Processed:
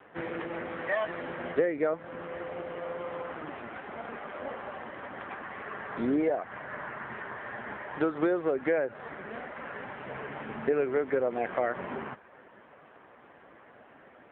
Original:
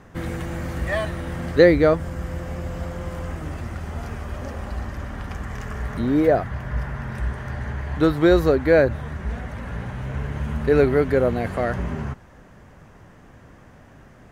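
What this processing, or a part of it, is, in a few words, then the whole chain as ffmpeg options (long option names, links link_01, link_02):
voicemail: -filter_complex "[0:a]asplit=3[link_01][link_02][link_03];[link_01]afade=type=out:start_time=5.52:duration=0.02[link_04];[link_02]equalizer=frequency=86:width=6.2:gain=-3.5,afade=type=in:start_time=5.52:duration=0.02,afade=type=out:start_time=6.09:duration=0.02[link_05];[link_03]afade=type=in:start_time=6.09:duration=0.02[link_06];[link_04][link_05][link_06]amix=inputs=3:normalize=0,highpass=370,lowpass=3200,acompressor=threshold=-25dB:ratio=10,volume=2dB" -ar 8000 -c:a libopencore_amrnb -b:a 5900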